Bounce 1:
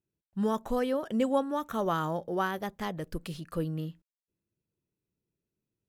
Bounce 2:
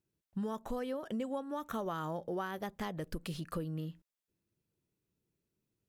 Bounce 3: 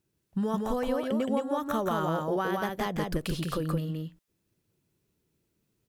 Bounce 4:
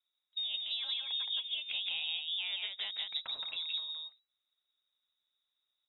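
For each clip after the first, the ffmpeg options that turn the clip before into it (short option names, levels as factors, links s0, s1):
-af "acompressor=threshold=0.0141:ratio=6,volume=1.26"
-af "aecho=1:1:170:0.708,volume=2.37"
-af "lowpass=f=3300:t=q:w=0.5098,lowpass=f=3300:t=q:w=0.6013,lowpass=f=3300:t=q:w=0.9,lowpass=f=3300:t=q:w=2.563,afreqshift=-3900,volume=0.376"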